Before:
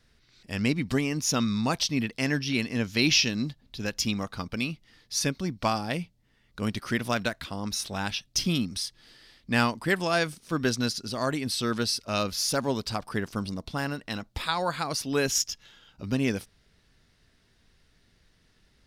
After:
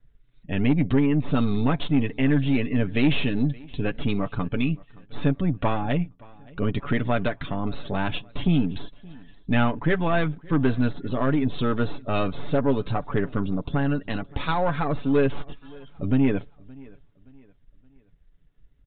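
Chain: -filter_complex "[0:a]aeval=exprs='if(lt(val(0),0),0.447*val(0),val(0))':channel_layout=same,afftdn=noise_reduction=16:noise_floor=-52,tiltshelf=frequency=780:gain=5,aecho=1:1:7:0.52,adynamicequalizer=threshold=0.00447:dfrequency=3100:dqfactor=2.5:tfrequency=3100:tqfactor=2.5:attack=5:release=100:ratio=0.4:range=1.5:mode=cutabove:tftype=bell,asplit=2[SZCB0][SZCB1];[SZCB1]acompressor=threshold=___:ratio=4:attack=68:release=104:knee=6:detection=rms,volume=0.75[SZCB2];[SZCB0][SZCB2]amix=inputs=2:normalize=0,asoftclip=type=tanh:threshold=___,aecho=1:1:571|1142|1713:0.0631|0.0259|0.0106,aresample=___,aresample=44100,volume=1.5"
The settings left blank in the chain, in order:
0.02, 0.168, 8000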